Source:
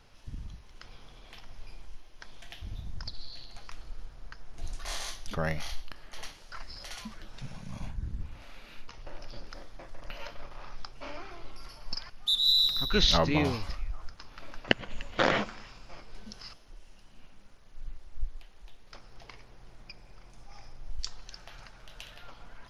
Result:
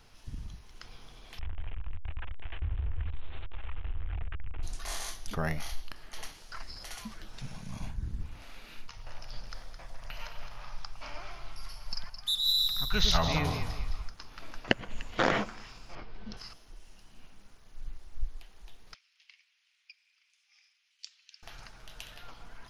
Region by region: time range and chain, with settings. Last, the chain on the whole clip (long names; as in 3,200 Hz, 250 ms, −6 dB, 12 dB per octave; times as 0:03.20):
0:01.39–0:04.63: linear delta modulator 16 kbit/s, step −36.5 dBFS + low shelf with overshoot 110 Hz +11.5 dB, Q 3 + downward compressor 3 to 1, threshold −30 dBFS
0:08.86–0:14.10: parametric band 330 Hz −13 dB 1.1 octaves + delay that swaps between a low-pass and a high-pass 107 ms, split 990 Hz, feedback 54%, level −4 dB
0:15.95–0:16.37: high-frequency loss of the air 260 metres + envelope flattener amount 50%
0:18.94–0:21.43: four-pole ladder high-pass 2,100 Hz, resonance 45% + high-frequency loss of the air 52 metres
whole clip: high-shelf EQ 6,800 Hz +7 dB; notch filter 560 Hz, Q 12; dynamic equaliser 4,000 Hz, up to −5 dB, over −46 dBFS, Q 0.74